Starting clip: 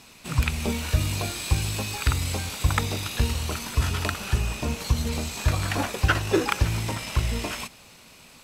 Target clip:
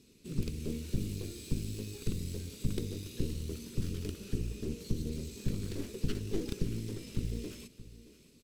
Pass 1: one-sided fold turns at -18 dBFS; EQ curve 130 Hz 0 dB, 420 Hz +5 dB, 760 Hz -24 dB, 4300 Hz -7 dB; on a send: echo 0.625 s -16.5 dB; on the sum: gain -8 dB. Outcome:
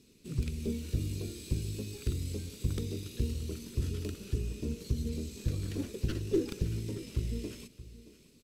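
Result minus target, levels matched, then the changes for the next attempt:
one-sided fold: distortion -12 dB
change: one-sided fold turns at -28.5 dBFS

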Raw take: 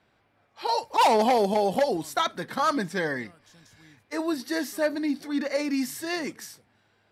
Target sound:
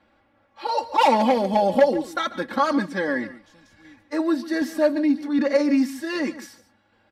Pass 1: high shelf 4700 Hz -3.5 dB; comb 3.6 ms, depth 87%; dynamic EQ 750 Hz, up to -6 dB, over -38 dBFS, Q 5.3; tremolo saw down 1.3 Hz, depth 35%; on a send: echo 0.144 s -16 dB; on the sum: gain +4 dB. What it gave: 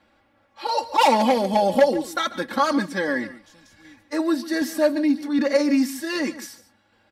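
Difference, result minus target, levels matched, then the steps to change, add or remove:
8000 Hz band +6.0 dB
change: high shelf 4700 Hz -13 dB

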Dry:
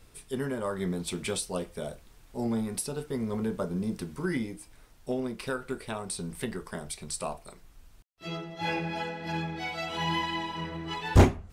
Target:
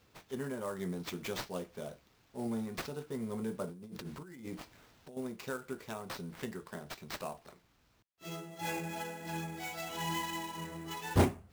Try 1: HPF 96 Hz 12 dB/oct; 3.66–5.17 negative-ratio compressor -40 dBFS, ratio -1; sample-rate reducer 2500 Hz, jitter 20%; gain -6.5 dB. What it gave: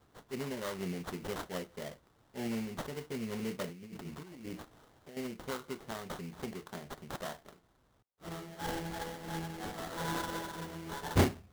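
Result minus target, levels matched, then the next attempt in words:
sample-rate reducer: distortion +7 dB
HPF 96 Hz 12 dB/oct; 3.66–5.17 negative-ratio compressor -40 dBFS, ratio -1; sample-rate reducer 9600 Hz, jitter 20%; gain -6.5 dB

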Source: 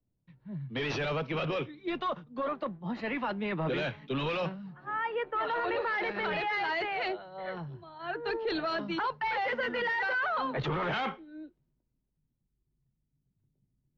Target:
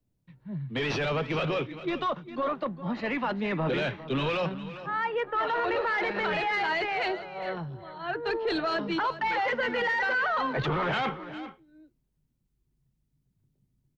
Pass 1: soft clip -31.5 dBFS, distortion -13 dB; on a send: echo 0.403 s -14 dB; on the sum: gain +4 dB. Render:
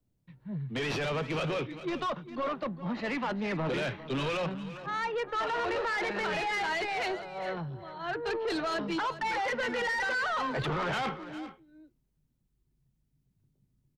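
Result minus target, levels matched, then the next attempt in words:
soft clip: distortion +14 dB
soft clip -22 dBFS, distortion -27 dB; on a send: echo 0.403 s -14 dB; on the sum: gain +4 dB

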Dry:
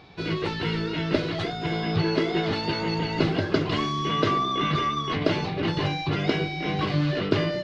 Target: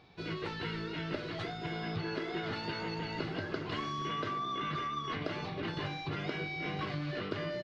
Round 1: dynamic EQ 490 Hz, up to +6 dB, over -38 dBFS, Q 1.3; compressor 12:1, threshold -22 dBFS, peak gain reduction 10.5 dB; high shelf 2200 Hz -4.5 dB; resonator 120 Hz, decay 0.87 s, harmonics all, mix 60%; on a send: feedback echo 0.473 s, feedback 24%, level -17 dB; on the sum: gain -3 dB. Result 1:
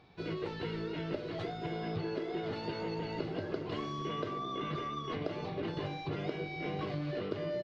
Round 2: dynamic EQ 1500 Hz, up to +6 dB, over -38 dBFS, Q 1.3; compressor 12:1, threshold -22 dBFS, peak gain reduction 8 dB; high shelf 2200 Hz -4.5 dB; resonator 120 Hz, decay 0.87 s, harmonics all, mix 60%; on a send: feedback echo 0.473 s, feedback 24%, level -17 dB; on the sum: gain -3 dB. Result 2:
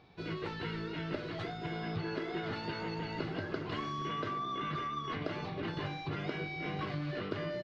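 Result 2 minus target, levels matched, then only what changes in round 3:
4000 Hz band -2.5 dB
remove: high shelf 2200 Hz -4.5 dB

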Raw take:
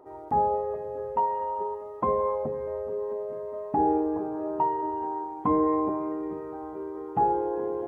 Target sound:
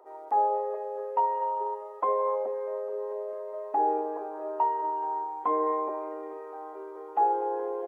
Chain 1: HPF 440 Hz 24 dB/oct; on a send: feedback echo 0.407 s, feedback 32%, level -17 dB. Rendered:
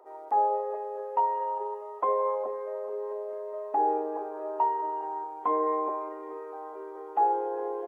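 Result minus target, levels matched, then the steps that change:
echo 0.161 s late
change: feedback echo 0.246 s, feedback 32%, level -17 dB

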